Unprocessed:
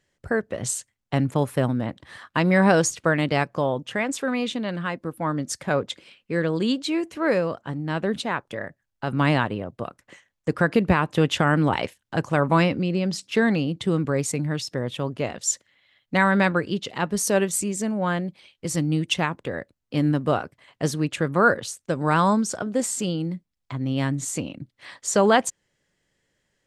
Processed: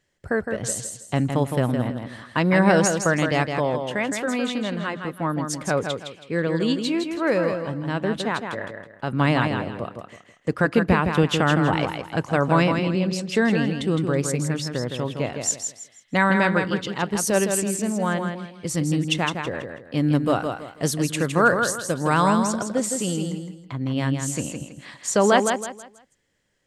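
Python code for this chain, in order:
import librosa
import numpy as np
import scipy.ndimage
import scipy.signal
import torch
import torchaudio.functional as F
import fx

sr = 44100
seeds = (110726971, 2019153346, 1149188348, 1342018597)

y = fx.high_shelf(x, sr, hz=6900.0, db=11.0, at=(20.12, 22.43))
y = fx.echo_feedback(y, sr, ms=162, feedback_pct=30, wet_db=-6.0)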